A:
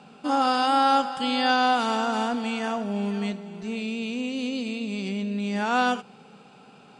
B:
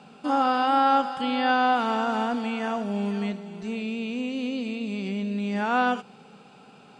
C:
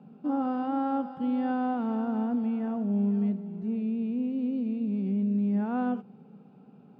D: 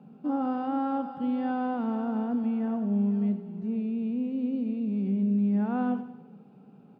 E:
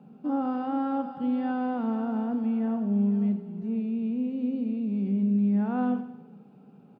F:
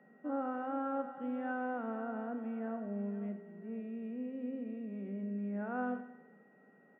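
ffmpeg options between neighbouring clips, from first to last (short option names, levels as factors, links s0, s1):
-filter_complex "[0:a]acrossover=split=3100[s0][s1];[s1]acompressor=threshold=0.00398:ratio=4:attack=1:release=60[s2];[s0][s2]amix=inputs=2:normalize=0"
-af "bandpass=f=190:t=q:w=1.2:csg=0,volume=1.33"
-af "aecho=1:1:93|186|279|372|465:0.224|0.112|0.056|0.028|0.014"
-filter_complex "[0:a]asplit=2[s0][s1];[s1]adelay=40,volume=0.224[s2];[s0][s2]amix=inputs=2:normalize=0"
-af "highpass=330,equalizer=f=600:t=q:w=4:g=7,equalizer=f=880:t=q:w=4:g=-5,equalizer=f=1500:t=q:w=4:g=7,lowpass=f=2500:w=0.5412,lowpass=f=2500:w=1.3066,aeval=exprs='val(0)+0.000794*sin(2*PI*1900*n/s)':c=same,volume=0.501"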